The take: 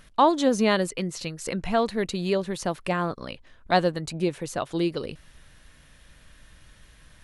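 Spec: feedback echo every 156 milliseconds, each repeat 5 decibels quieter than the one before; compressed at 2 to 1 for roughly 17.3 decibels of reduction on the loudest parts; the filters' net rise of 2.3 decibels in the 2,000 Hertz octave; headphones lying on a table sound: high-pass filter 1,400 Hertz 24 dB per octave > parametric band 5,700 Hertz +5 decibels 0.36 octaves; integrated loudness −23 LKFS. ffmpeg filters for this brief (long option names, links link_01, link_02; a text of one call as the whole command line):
ffmpeg -i in.wav -af "equalizer=frequency=2000:width_type=o:gain=3.5,acompressor=threshold=-47dB:ratio=2,highpass=frequency=1400:width=0.5412,highpass=frequency=1400:width=1.3066,equalizer=frequency=5700:width_type=o:width=0.36:gain=5,aecho=1:1:156|312|468|624|780|936|1092:0.562|0.315|0.176|0.0988|0.0553|0.031|0.0173,volume=22.5dB" out.wav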